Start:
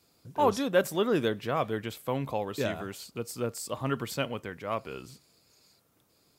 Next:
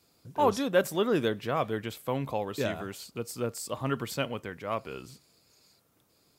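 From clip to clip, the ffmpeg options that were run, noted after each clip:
ffmpeg -i in.wav -af anull out.wav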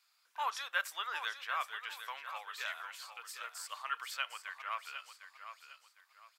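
ffmpeg -i in.wav -af "highpass=frequency=1200:width=0.5412,highpass=frequency=1200:width=1.3066,highshelf=frequency=4300:gain=-11,aecho=1:1:754|1508|2262:0.316|0.0949|0.0285,volume=1.5dB" out.wav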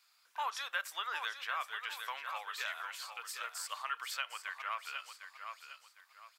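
ffmpeg -i in.wav -af "acompressor=threshold=-39dB:ratio=2.5,volume=3.5dB" out.wav

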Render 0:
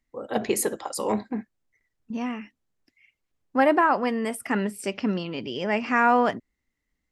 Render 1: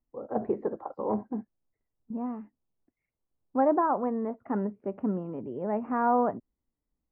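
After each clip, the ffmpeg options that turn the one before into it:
ffmpeg -i in.wav -af "lowpass=frequency=1100:width=0.5412,lowpass=frequency=1100:width=1.3066,volume=-3.5dB" out.wav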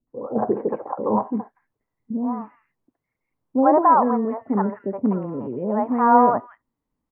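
ffmpeg -i in.wav -filter_complex "[0:a]equalizer=frequency=125:width_type=o:width=1:gain=8,equalizer=frequency=250:width_type=o:width=1:gain=7,equalizer=frequency=500:width_type=o:width=1:gain=7,equalizer=frequency=1000:width_type=o:width=1:gain=12,equalizer=frequency=2000:width_type=o:width=1:gain=8,acrossover=split=560|2100[link_01][link_02][link_03];[link_02]adelay=70[link_04];[link_03]adelay=240[link_05];[link_01][link_04][link_05]amix=inputs=3:normalize=0,volume=-1dB" out.wav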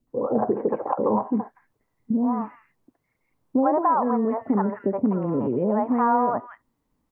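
ffmpeg -i in.wav -af "acompressor=threshold=-27dB:ratio=4,volume=7dB" out.wav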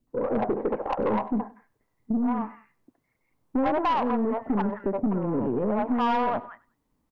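ffmpeg -i in.wav -af "aeval=exprs='(tanh(8.91*val(0)+0.25)-tanh(0.25))/8.91':channel_layout=same,aecho=1:1:97|194:0.0944|0.0274" out.wav

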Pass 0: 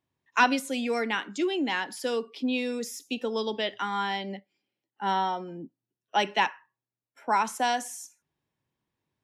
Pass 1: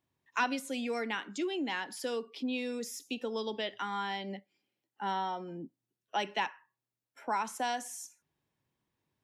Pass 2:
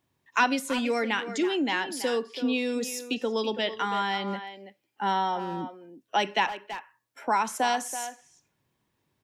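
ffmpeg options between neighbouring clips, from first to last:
ffmpeg -i in.wav -af "acompressor=threshold=-43dB:ratio=1.5" out.wav
ffmpeg -i in.wav -filter_complex "[0:a]asplit=2[link_01][link_02];[link_02]adelay=330,highpass=300,lowpass=3400,asoftclip=type=hard:threshold=-28dB,volume=-10dB[link_03];[link_01][link_03]amix=inputs=2:normalize=0,volume=7.5dB" out.wav

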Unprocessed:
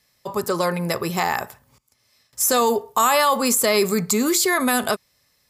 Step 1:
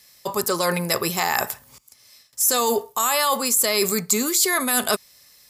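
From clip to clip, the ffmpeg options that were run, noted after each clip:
ffmpeg -i in.wav -af "highshelf=frequency=3100:gain=10,areverse,acompressor=threshold=-24dB:ratio=4,areverse,equalizer=frequency=93:width_type=o:width=2:gain=-4,volume=5dB" out.wav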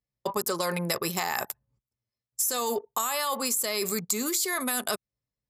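ffmpeg -i in.wav -af "anlmdn=100,highpass=78,acompressor=threshold=-25dB:ratio=6" out.wav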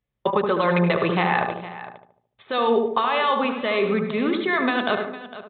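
ffmpeg -i in.wav -filter_complex "[0:a]asplit=2[link_01][link_02];[link_02]adelay=74,lowpass=frequency=1100:poles=1,volume=-3.5dB,asplit=2[link_03][link_04];[link_04]adelay=74,lowpass=frequency=1100:poles=1,volume=0.5,asplit=2[link_05][link_06];[link_06]adelay=74,lowpass=frequency=1100:poles=1,volume=0.5,asplit=2[link_07][link_08];[link_08]adelay=74,lowpass=frequency=1100:poles=1,volume=0.5,asplit=2[link_09][link_10];[link_10]adelay=74,lowpass=frequency=1100:poles=1,volume=0.5,asplit=2[link_11][link_12];[link_12]adelay=74,lowpass=frequency=1100:poles=1,volume=0.5,asplit=2[link_13][link_14];[link_14]adelay=74,lowpass=frequency=1100:poles=1,volume=0.5[link_15];[link_03][link_05][link_07][link_09][link_11][link_13][link_15]amix=inputs=7:normalize=0[link_16];[link_01][link_16]amix=inputs=2:normalize=0,aresample=8000,aresample=44100,asplit=2[link_17][link_18];[link_18]aecho=0:1:100|456:0.237|0.178[link_19];[link_17][link_19]amix=inputs=2:normalize=0,volume=8dB" out.wav

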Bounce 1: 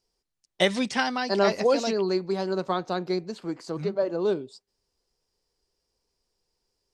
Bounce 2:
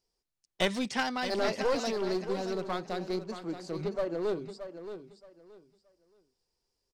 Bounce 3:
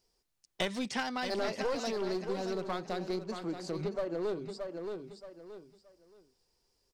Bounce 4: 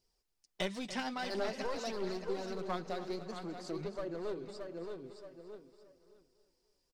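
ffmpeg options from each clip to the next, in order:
ffmpeg -i in.wav -af "aeval=exprs='clip(val(0),-1,0.0531)':channel_layout=same,aecho=1:1:624|1248|1872:0.299|0.0687|0.0158,volume=-4.5dB" out.wav
ffmpeg -i in.wav -af "acompressor=threshold=-44dB:ratio=2,volume=6dB" out.wav
ffmpeg -i in.wav -af "flanger=delay=0.2:depth=7.9:regen=47:speed=0.49:shape=triangular,aecho=1:1:285|570|855|1140:0.211|0.0972|0.0447|0.0206" out.wav

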